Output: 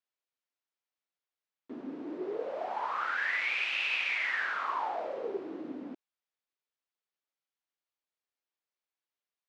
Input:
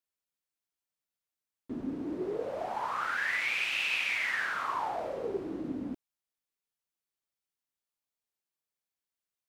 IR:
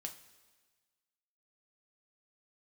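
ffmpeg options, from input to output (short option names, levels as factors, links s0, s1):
-af "highpass=330,lowpass=4300"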